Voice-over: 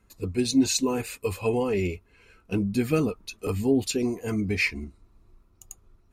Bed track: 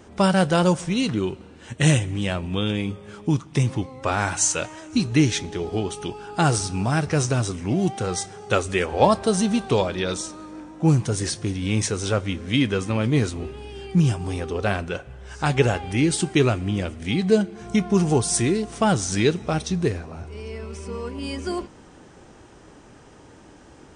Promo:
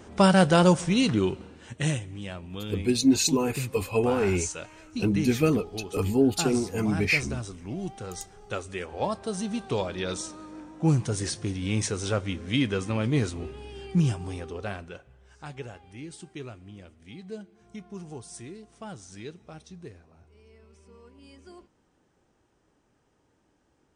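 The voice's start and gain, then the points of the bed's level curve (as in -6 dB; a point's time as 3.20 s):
2.50 s, +1.0 dB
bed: 1.42 s 0 dB
2.01 s -12 dB
9.17 s -12 dB
10.21 s -4.5 dB
14.03 s -4.5 dB
15.69 s -21 dB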